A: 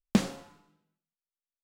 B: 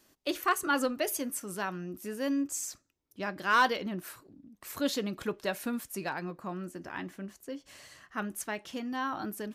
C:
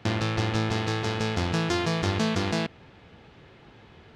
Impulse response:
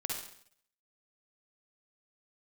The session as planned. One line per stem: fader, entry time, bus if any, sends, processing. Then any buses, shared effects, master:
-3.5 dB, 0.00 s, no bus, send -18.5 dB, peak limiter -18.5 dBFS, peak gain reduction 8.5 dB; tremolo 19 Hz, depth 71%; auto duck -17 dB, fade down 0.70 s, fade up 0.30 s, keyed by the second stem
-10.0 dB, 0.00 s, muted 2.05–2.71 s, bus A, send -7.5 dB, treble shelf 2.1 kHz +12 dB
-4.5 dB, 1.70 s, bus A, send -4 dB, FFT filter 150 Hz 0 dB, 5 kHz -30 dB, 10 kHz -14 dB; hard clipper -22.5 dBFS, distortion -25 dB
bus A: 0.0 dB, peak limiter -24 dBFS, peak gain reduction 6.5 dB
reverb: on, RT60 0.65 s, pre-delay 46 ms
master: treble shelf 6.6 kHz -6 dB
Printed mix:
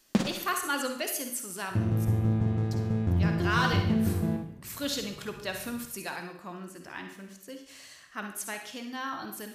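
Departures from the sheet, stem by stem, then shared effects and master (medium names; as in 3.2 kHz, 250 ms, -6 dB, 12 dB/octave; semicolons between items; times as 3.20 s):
stem A -3.5 dB -> +8.0 dB; stem C: missing hard clipper -22.5 dBFS, distortion -25 dB; reverb return +7.0 dB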